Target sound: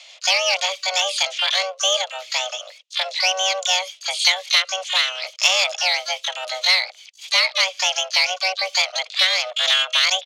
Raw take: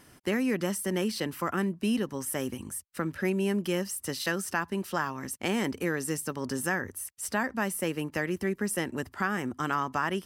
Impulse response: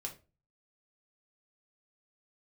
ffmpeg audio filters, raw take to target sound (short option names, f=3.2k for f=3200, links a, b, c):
-filter_complex "[0:a]highpass=f=180:t=q:w=0.5412,highpass=f=180:t=q:w=1.307,lowpass=f=3.2k:t=q:w=0.5176,lowpass=f=3.2k:t=q:w=0.7071,lowpass=f=3.2k:t=q:w=1.932,afreqshift=370,asplit=3[a][b][c];[b]asetrate=37084,aresample=44100,atempo=1.18921,volume=-18dB[d];[c]asetrate=88200,aresample=44100,atempo=0.5,volume=-9dB[e];[a][d][e]amix=inputs=3:normalize=0,aexciter=amount=5.3:drive=9.6:freq=2.4k,volume=2dB"